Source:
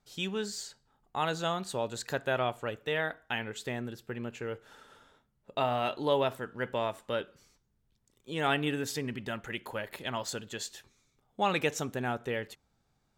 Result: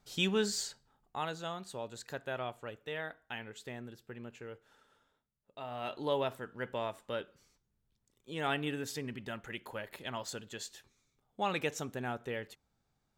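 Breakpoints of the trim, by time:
0.64 s +3.5 dB
1.37 s -8.5 dB
4.34 s -8.5 dB
5.55 s -17 dB
5.95 s -5 dB

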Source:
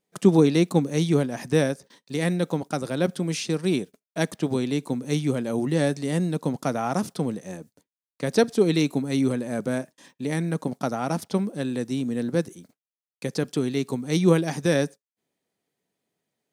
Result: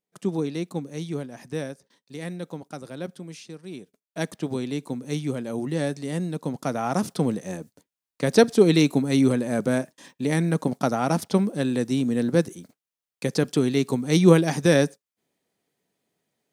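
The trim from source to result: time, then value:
2.98 s -9.5 dB
3.66 s -16 dB
4.18 s -3.5 dB
6.42 s -3.5 dB
7.27 s +3.5 dB

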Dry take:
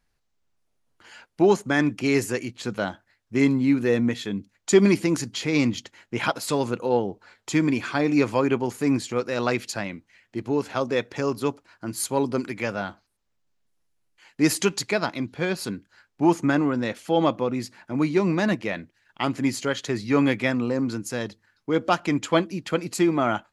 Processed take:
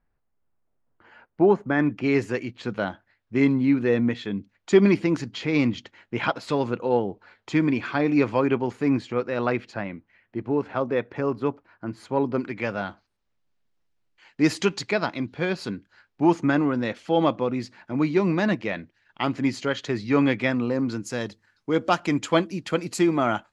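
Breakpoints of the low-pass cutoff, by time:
1.58 s 1.5 kHz
2.27 s 3.4 kHz
8.73 s 3.4 kHz
9.79 s 2 kHz
12.16 s 2 kHz
12.84 s 4.7 kHz
20.82 s 4.7 kHz
21.24 s 9.8 kHz

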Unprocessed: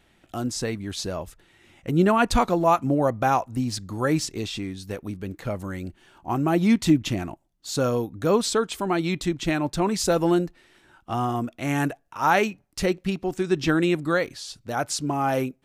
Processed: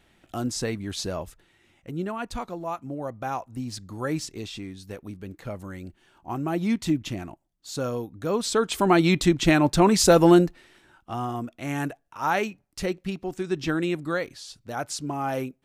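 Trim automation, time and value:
1.22 s -0.5 dB
2.10 s -12.5 dB
2.84 s -12.5 dB
3.81 s -5.5 dB
8.33 s -5.5 dB
8.82 s +5.5 dB
10.43 s +5.5 dB
11.12 s -4.5 dB

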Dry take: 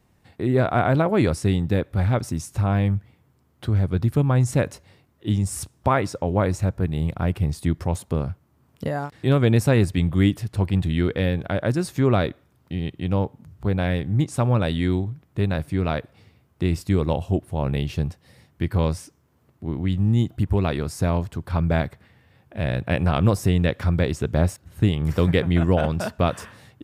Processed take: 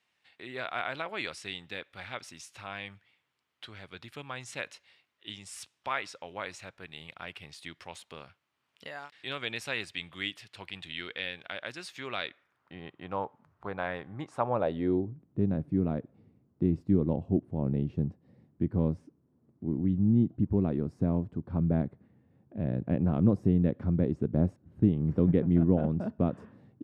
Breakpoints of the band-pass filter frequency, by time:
band-pass filter, Q 1.5
12.23 s 2.9 kHz
12.78 s 1.1 kHz
14.29 s 1.1 kHz
15.25 s 240 Hz

